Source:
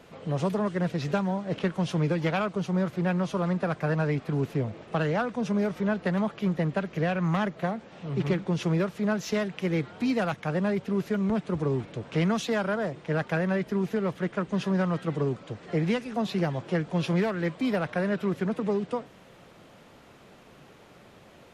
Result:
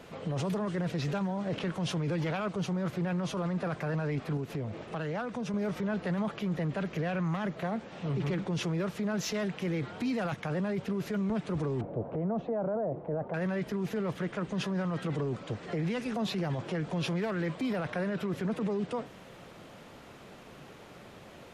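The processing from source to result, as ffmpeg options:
-filter_complex "[0:a]asettb=1/sr,asplit=3[s0][s1][s2];[s0]atrim=end=4.374[s3];[s1]atrim=start=4.37:end=5.54,asetpts=PTS-STARTPTS,afade=t=in:d=0.004:c=qsin,afade=t=out:st=1.166:d=0.004:c=qsin,acompressor=threshold=0.0178:ratio=4:attack=3.2:release=140:knee=1:detection=peak[s4];[s2]atrim=start=5.536[s5];[s3][s4]acrossfade=d=0.004:c1=hsin:c2=qsin[s6];[s6][s5]acrossfade=d=0.004:c1=qsin:c2=hsin,asettb=1/sr,asplit=3[s7][s8][s9];[s7]atrim=end=11.814[s10];[s8]atrim=start=11.81:end=13.34,asetpts=PTS-STARTPTS,afade=t=in:d=0.004:c=qsin,afade=t=out:st=1.526:d=0.004:c=qsin,lowpass=f=680:t=q:w=2.1[s11];[s9]atrim=start=13.336[s12];[s10][s11]acrossfade=d=0.004:c1=hsin:c2=qsin[s13];[s13][s12]acrossfade=d=0.004:c1=qsin:c2=hsin,alimiter=level_in=1.5:limit=0.0631:level=0:latency=1:release=19,volume=0.668,volume=1.33"

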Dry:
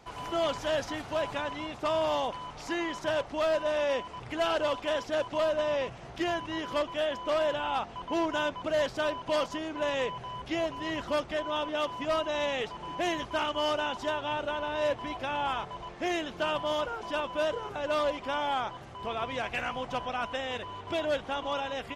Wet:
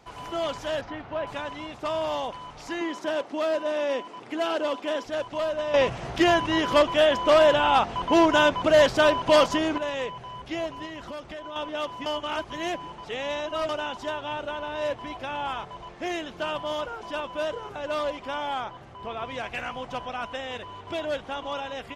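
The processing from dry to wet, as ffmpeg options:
-filter_complex "[0:a]asettb=1/sr,asplit=3[s0][s1][s2];[s0]atrim=end=0.814[s3];[s1]atrim=start=0.81:end=1.27,asetpts=PTS-STARTPTS,afade=t=in:d=0.004:c=qsin,afade=t=out:st=0.456:d=0.004:c=qsin,lowpass=2400[s4];[s2]atrim=start=1.266[s5];[s3][s4]acrossfade=d=0.004:c1=hsin:c2=qsin[s6];[s6][s5]acrossfade=d=0.004:c1=qsin:c2=hsin,asettb=1/sr,asplit=3[s7][s8][s9];[s7]atrim=end=2.814[s10];[s8]atrim=start=2.81:end=5.05,asetpts=PTS-STARTPTS,afade=t=in:d=0.004:c=qsin,afade=t=out:st=2.236:d=0.004:c=qsin,highpass=f=270:t=q:w=1.9[s11];[s9]atrim=start=5.046[s12];[s10][s11]acrossfade=d=0.004:c1=hsin:c2=qsin[s13];[s13][s12]acrossfade=d=0.004:c1=qsin:c2=hsin,asettb=1/sr,asplit=3[s14][s15][s16];[s14]atrim=end=10.854[s17];[s15]atrim=start=10.85:end=11.56,asetpts=PTS-STARTPTS,afade=t=in:d=0.004:c=qsin,afade=t=out:st=0.706:d=0.004:c=qsin,acompressor=threshold=0.02:ratio=6:attack=3.2:release=140:knee=1:detection=peak[s18];[s16]atrim=start=11.556[s19];[s17][s18]acrossfade=d=0.004:c1=hsin:c2=qsin[s20];[s20][s19]acrossfade=d=0.004:c1=qsin:c2=hsin,asettb=1/sr,asplit=3[s21][s22][s23];[s21]atrim=end=18.644[s24];[s22]atrim=start=18.64:end=19.25,asetpts=PTS-STARTPTS,afade=t=in:d=0.004:c=qsin,afade=t=out:st=0.606:d=0.004:c=qsin,highshelf=f=4600:g=-7[s25];[s23]atrim=start=19.246[s26];[s24][s25]acrossfade=d=0.004:c1=hsin:c2=qsin[s27];[s27][s26]acrossfade=d=0.004:c1=qsin:c2=hsin,asplit=5[s28][s29][s30][s31][s32];[s28]atrim=end=5.742[s33];[s29]atrim=start=5.738:end=9.782,asetpts=PTS-STARTPTS,volume=3.35[s34];[s30]atrim=start=9.778:end=12.062[s35];[s31]atrim=start=12.058:end=13.692,asetpts=PTS-STARTPTS,areverse[s36];[s32]atrim=start=13.688[s37];[s33][s34]acrossfade=d=0.004:c1=hsin:c2=hsin[s38];[s38][s35]acrossfade=d=0.004:c1=hsin:c2=hsin[s39];[s39][s36]acrossfade=d=0.004:c1=hsin:c2=hsin[s40];[s40][s37]acrossfade=d=0.004:c1=hsin:c2=hsin"

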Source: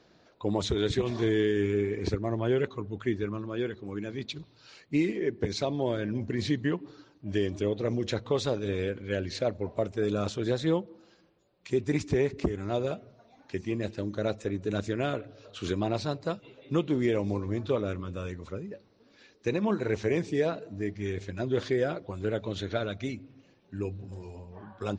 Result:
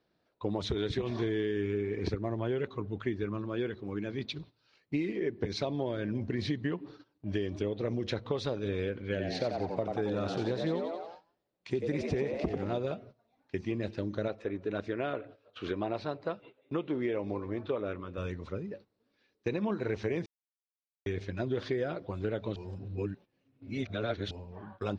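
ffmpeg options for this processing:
-filter_complex "[0:a]asettb=1/sr,asplit=3[s0][s1][s2];[s0]atrim=end=9.004[s3];[s1]atrim=start=9:end=12.78,asetpts=PTS-STARTPTS,afade=t=in:d=0.004:c=qsin,afade=t=out:st=3.776:d=0.004:c=qsin,asplit=7[s4][s5][s6][s7][s8][s9][s10];[s5]adelay=90,afreqshift=85,volume=0.531[s11];[s6]adelay=180,afreqshift=170,volume=0.26[s12];[s7]adelay=270,afreqshift=255,volume=0.127[s13];[s8]adelay=360,afreqshift=340,volume=0.0624[s14];[s9]adelay=450,afreqshift=425,volume=0.0305[s15];[s10]adelay=540,afreqshift=510,volume=0.015[s16];[s4][s11][s12][s13][s14][s15][s16]amix=inputs=7:normalize=0,atrim=end_sample=166698[s17];[s2]atrim=start=12.776[s18];[s3][s17]acrossfade=d=0.004:c1=hsin:c2=qsin[s19];[s19][s18]acrossfade=d=0.004:c1=qsin:c2=hsin,asettb=1/sr,asplit=3[s20][s21][s22];[s20]atrim=end=14.284[s23];[s21]atrim=start=14.28:end=18.18,asetpts=PTS-STARTPTS,afade=t=in:d=0.004:c=qsin,afade=t=out:st=3.896:d=0.004:c=qsin,bass=f=250:g=-9,treble=f=4000:g=-13[s24];[s22]atrim=start=18.176[s25];[s23][s24]acrossfade=d=0.004:c1=hsin:c2=qsin[s26];[s26][s25]acrossfade=d=0.004:c1=qsin:c2=hsin,asplit=5[s27][s28][s29][s30][s31];[s27]atrim=end=20.26,asetpts=PTS-STARTPTS,afade=t=out:st=20.256:d=0.004:c=hsin[s32];[s28]atrim=start=20.26:end=21.06,asetpts=PTS-STARTPTS,volume=0[s33];[s29]atrim=start=21.06:end=22.562,asetpts=PTS-STARTPTS,afade=t=in:d=0.004:c=hsin[s34];[s30]atrim=start=22.558:end=24.312,asetpts=PTS-STARTPTS,areverse[s35];[s31]atrim=start=24.308[s36];[s32][s33][s34]concat=n=3:v=0:a=1[s37];[s37][s35]acrossfade=d=0.004:c1=hsin:c2=hsin[s38];[s38][s36]acrossfade=d=0.004:c1=hsin:c2=hsin,agate=range=0.178:threshold=0.00355:ratio=16:detection=peak,equalizer=f=7300:w=2.5:g=-13.5,acompressor=threshold=0.0398:ratio=6"

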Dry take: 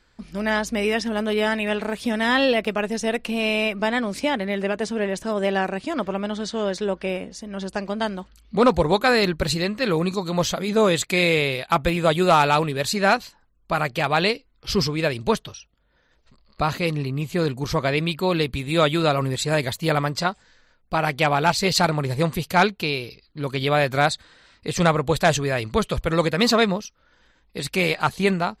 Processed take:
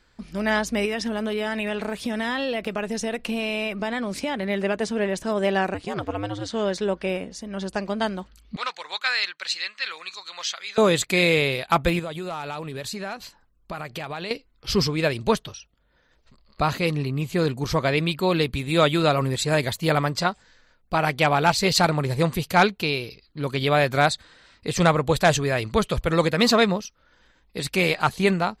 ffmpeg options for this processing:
-filter_complex "[0:a]asettb=1/sr,asplit=3[s0][s1][s2];[s0]atrim=end=0.854[s3];[s1]atrim=start=0.85:end=4.43,asetpts=PTS-STARTPTS,afade=t=in:d=0.004:c=qsin,afade=t=out:st=3.576:d=0.004:c=qsin,acompressor=threshold=0.0794:ratio=6:attack=3.2:release=140:knee=1:detection=peak[s4];[s2]atrim=start=4.426[s5];[s3][s4]acrossfade=d=0.004:c1=hsin:c2=qsin[s6];[s6][s5]acrossfade=d=0.004:c1=qsin:c2=hsin,asettb=1/sr,asplit=3[s7][s8][s9];[s7]atrim=end=5.744[s10];[s8]atrim=start=5.74:end=6.5,asetpts=PTS-STARTPTS,afade=t=in:d=0.004:c=qsin,afade=t=out:st=0.756:d=0.004:c=qsin,aeval=exprs='val(0)*sin(2*PI*100*n/s)':c=same[s11];[s9]atrim=start=6.496[s12];[s10][s11]acrossfade=d=0.004:c1=hsin:c2=qsin[s13];[s13][s12]acrossfade=d=0.004:c1=qsin:c2=hsin,asettb=1/sr,asplit=3[s14][s15][s16];[s14]atrim=end=8.564[s17];[s15]atrim=start=8.56:end=10.78,asetpts=PTS-STARTPTS,afade=t=in:d=0.004:c=qsin,afade=t=out:st=2.216:d=0.004:c=qsin,asuperpass=centerf=3200:order=4:qfactor=0.67[s18];[s16]atrim=start=10.776[s19];[s17][s18]acrossfade=d=0.004:c1=hsin:c2=qsin[s20];[s20][s19]acrossfade=d=0.004:c1=qsin:c2=hsin,asettb=1/sr,asplit=3[s21][s22][s23];[s21]atrim=end=11.994[s24];[s22]atrim=start=11.99:end=14.31,asetpts=PTS-STARTPTS,afade=t=in:d=0.004:c=qsin,afade=t=out:st=2.316:d=0.004:c=qsin,acompressor=threshold=0.0355:ratio=6:attack=3.2:release=140:knee=1:detection=peak[s25];[s23]atrim=start=14.306[s26];[s24][s25]acrossfade=d=0.004:c1=hsin:c2=qsin[s27];[s27][s26]acrossfade=d=0.004:c1=qsin:c2=hsin"

